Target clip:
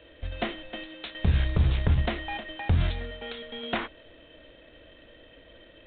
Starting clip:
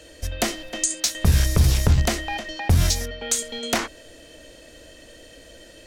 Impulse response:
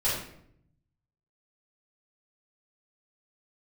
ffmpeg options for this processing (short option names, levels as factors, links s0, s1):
-af "volume=0.531" -ar 8000 -c:a adpcm_g726 -b:a 24k